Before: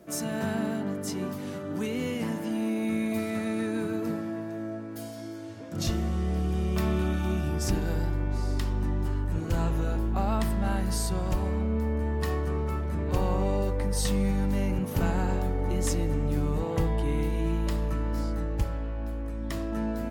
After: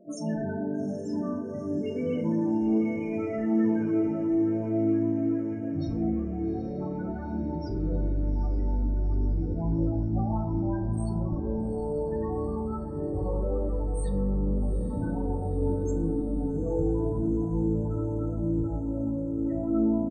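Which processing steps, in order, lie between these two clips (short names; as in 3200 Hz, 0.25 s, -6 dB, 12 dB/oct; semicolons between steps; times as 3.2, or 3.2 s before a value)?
HPF 40 Hz 6 dB/oct; notches 60/120/180/240/300/360/420/480 Hz; dynamic EQ 340 Hz, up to +5 dB, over -47 dBFS, Q 3.6; in parallel at +2 dB: limiter -23.5 dBFS, peak gain reduction 9 dB; on the sum: soft clip -21 dBFS, distortion -14 dB; chorus 0.8 Hz, delay 17 ms, depth 3.7 ms; loudest bins only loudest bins 16; doubler 36 ms -12.5 dB; on a send: diffused feedback echo 0.841 s, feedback 68%, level -12 dB; on the sum: FDN reverb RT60 1.1 s, low-frequency decay 0.85×, high-frequency decay 0.4×, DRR 4.5 dB; gain -2 dB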